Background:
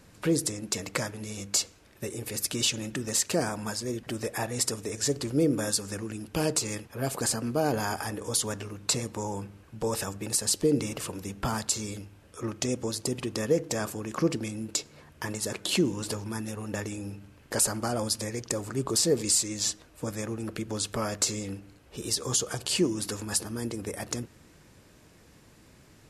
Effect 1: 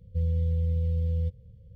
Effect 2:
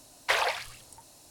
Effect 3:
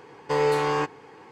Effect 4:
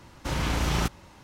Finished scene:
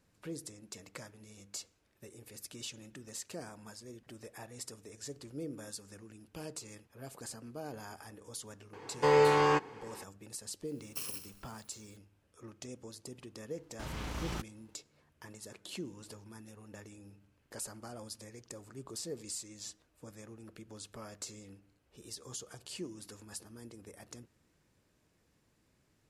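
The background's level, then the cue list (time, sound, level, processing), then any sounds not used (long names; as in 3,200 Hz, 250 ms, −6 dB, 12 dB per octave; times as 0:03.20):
background −17 dB
0:08.73: mix in 3 −2 dB
0:10.67: mix in 2 −14.5 dB + samples in bit-reversed order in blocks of 64 samples
0:13.54: mix in 4 −12.5 dB + mu-law and A-law mismatch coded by A
not used: 1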